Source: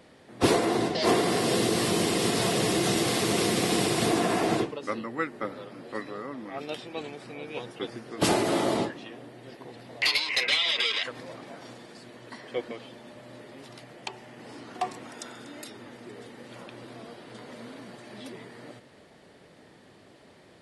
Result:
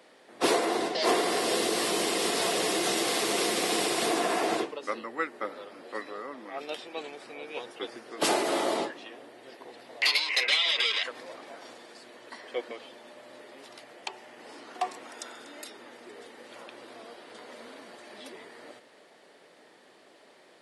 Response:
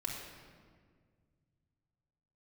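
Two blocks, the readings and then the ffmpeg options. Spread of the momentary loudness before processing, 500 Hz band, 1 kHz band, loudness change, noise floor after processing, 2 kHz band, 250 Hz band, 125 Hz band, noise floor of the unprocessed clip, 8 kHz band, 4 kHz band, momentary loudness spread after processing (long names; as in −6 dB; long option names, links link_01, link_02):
21 LU, −2.0 dB, 0.0 dB, −1.5 dB, −57 dBFS, 0.0 dB, −6.0 dB, −16.5 dB, −55 dBFS, 0.0 dB, 0.0 dB, 22 LU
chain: -af "highpass=390"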